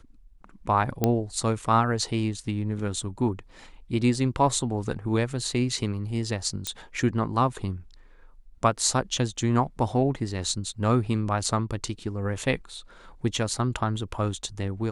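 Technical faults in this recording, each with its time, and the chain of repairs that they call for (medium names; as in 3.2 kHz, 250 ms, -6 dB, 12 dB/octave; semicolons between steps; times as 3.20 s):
1.04 s: pop -8 dBFS
6.67 s: pop -12 dBFS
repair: de-click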